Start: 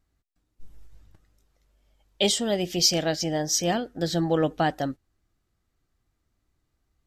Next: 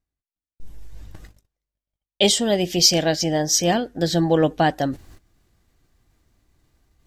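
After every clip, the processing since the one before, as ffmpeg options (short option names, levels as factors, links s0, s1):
-af "agate=range=0.0112:threshold=0.00112:ratio=16:detection=peak,bandreject=f=1300:w=10,areverse,acompressor=mode=upward:threshold=0.0224:ratio=2.5,areverse,volume=1.88"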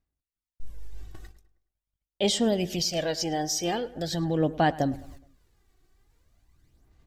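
-filter_complex "[0:a]alimiter=limit=0.188:level=0:latency=1:release=195,aphaser=in_gain=1:out_gain=1:delay=2.7:decay=0.53:speed=0.43:type=sinusoidal,asplit=2[s0][s1];[s1]adelay=105,lowpass=f=3000:p=1,volume=0.119,asplit=2[s2][s3];[s3]adelay=105,lowpass=f=3000:p=1,volume=0.47,asplit=2[s4][s5];[s5]adelay=105,lowpass=f=3000:p=1,volume=0.47,asplit=2[s6][s7];[s7]adelay=105,lowpass=f=3000:p=1,volume=0.47[s8];[s0][s2][s4][s6][s8]amix=inputs=5:normalize=0,volume=0.562"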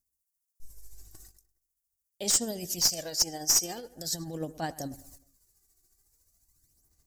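-af "aexciter=amount=13.5:drive=2.8:freq=4900,aeval=exprs='clip(val(0),-1,0.335)':c=same,tremolo=f=14:d=0.45,volume=0.355"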